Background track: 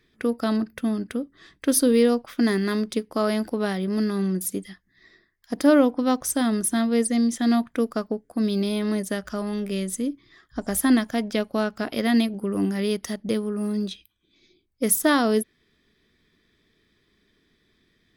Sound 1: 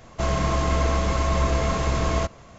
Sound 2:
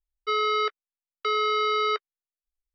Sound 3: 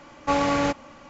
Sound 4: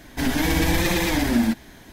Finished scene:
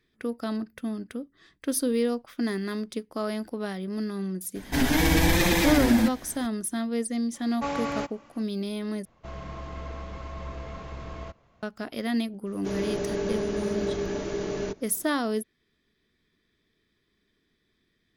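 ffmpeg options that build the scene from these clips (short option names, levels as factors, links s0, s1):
-filter_complex "[1:a]asplit=2[s0][s1];[0:a]volume=0.447[s2];[s0]lowpass=4100[s3];[s1]afreqshift=-470[s4];[s2]asplit=2[s5][s6];[s5]atrim=end=9.054[s7];[s3]atrim=end=2.58,asetpts=PTS-STARTPTS,volume=0.168[s8];[s6]atrim=start=11.626[s9];[4:a]atrim=end=1.92,asetpts=PTS-STARTPTS,volume=0.944,afade=t=in:d=0.004:c=hsin,afade=t=out:st=1.916:d=0.004:c=hsin,adelay=4550[s10];[3:a]atrim=end=1.09,asetpts=PTS-STARTPTS,volume=0.398,afade=t=in:d=0.004:c=hsin,afade=t=out:st=1.086:d=0.004:c=hsin,adelay=7340[s11];[s4]atrim=end=2.58,asetpts=PTS-STARTPTS,volume=0.398,afade=t=in:d=0.004:c=hsin,afade=t=out:st=2.576:d=0.004:c=hsin,adelay=12460[s12];[s7][s8]acrossfade=d=0.004:c1=hsin:c2=hsin[s13];[s13][s9]acrossfade=d=0.004:c1=hsin:c2=hsin[s14];[s14][s10][s11][s12]amix=inputs=4:normalize=0"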